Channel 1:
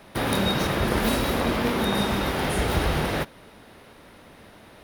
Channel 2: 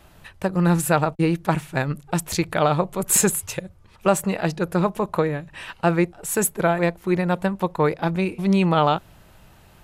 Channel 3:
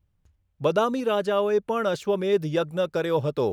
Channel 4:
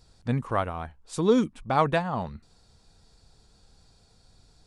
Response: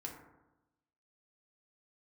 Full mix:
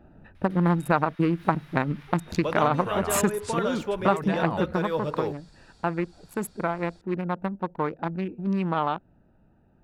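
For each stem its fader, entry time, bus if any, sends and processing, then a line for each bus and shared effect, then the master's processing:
−18.5 dB, 0.35 s, send −3 dB, high-pass filter 1,300 Hz; high-shelf EQ 12,000 Hz −9 dB; downward compressor 2.5 to 1, threshold −44 dBFS, peak gain reduction 12.5 dB
0:04.64 −3 dB → 0:04.85 −12 dB, 0.00 s, no send, adaptive Wiener filter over 41 samples; octave-band graphic EQ 250/1,000/8,000 Hz +10/+8/−5 dB
−7.0 dB, 1.80 s, send −6.5 dB, no processing
+0.5 dB, 2.35 s, no send, brickwall limiter −21 dBFS, peak gain reduction 11.5 dB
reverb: on, RT60 1.0 s, pre-delay 3 ms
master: parametric band 1,800 Hz +6 dB 2.3 octaves; downward compressor 2 to 1, threshold −23 dBFS, peak gain reduction 8.5 dB

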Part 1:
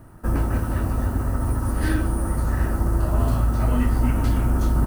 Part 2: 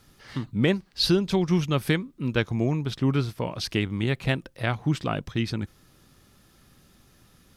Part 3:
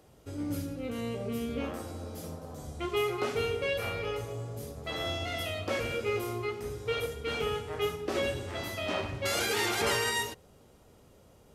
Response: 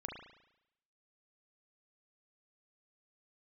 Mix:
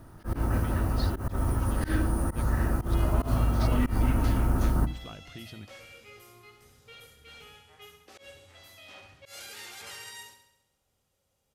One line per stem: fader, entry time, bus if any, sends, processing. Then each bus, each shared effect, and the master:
−3.0 dB, 0.00 s, no send, echo send −18.5 dB, notch filter 7,900 Hz, Q 7.1
−10.0 dB, 0.00 s, no send, no echo send, downward compressor, threshold −30 dBFS, peak gain reduction 13.5 dB
−5.0 dB, 0.00 s, no send, echo send −9 dB, guitar amp tone stack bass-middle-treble 5-5-5; hollow resonant body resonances 540/780 Hz, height 9 dB, ringing for 65 ms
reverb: not used
echo: repeating echo 68 ms, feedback 57%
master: mains-hum notches 60/120/180/240/300 Hz; volume swells 101 ms

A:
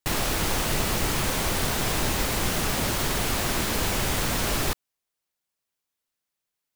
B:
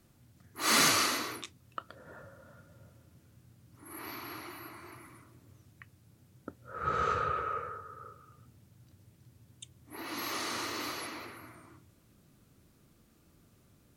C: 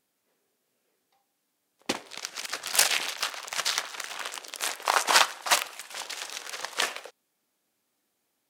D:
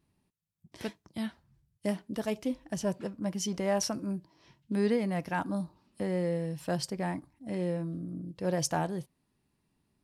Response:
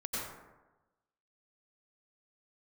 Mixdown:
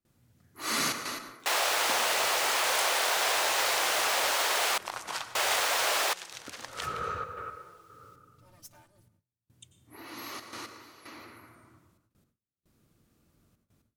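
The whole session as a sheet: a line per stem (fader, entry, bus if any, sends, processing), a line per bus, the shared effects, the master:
+2.5 dB, 1.40 s, muted 0:04.78–0:05.35, no send, high-pass filter 540 Hz 24 dB per octave; high-shelf EQ 9,100 Hz −8.5 dB; upward compression, threshold −57 dBFS
−6.0 dB, 0.00 s, send −10 dB, gate pattern "xxxxxxx.x..." 114 BPM −12 dB
−8.0 dB, 0.00 s, send −12.5 dB, downward compressor 3 to 1, threshold −29 dBFS, peak gain reduction 11.5 dB
−17.0 dB, 0.00 s, send −20.5 dB, lower of the sound and its delayed copy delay 6.7 ms; first-order pre-emphasis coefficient 0.8; comb filter 3.3 ms, depth 80%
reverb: on, RT60 1.1 s, pre-delay 82 ms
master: noise gate with hold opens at −59 dBFS

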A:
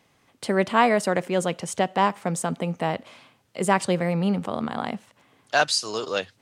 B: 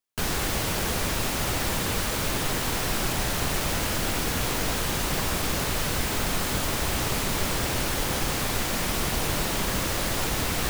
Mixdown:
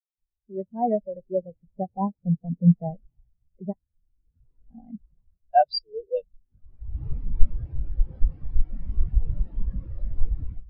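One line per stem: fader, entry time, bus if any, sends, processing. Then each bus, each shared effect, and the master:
−1.5 dB, 0.00 s, muted 0:03.73–0:04.70, no send, parametric band 1,200 Hz −13 dB 0.76 octaves; speech leveller within 4 dB 2 s
+3.0 dB, 0.00 s, no send, automatic ducking −10 dB, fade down 0.45 s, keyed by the first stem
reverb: not used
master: elliptic low-pass filter 5,500 Hz; automatic gain control gain up to 14.5 dB; every bin expanded away from the loudest bin 4 to 1

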